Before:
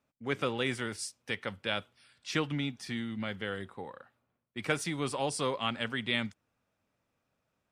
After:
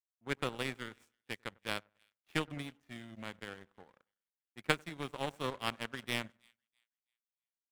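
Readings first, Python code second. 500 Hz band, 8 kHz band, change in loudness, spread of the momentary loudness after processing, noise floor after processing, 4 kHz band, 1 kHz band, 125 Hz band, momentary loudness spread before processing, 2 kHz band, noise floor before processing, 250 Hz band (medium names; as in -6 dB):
-6.5 dB, -9.0 dB, -5.0 dB, 14 LU, under -85 dBFS, -5.5 dB, -4.0 dB, -6.5 dB, 10 LU, -4.5 dB, -81 dBFS, -7.5 dB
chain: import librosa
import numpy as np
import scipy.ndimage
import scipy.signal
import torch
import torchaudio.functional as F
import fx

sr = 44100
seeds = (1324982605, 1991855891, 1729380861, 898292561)

y = scipy.ndimage.median_filter(x, 9, mode='constant')
y = fx.echo_split(y, sr, split_hz=1700.0, low_ms=96, high_ms=326, feedback_pct=52, wet_db=-14)
y = fx.power_curve(y, sr, exponent=2.0)
y = F.gain(torch.from_numpy(y), 5.5).numpy()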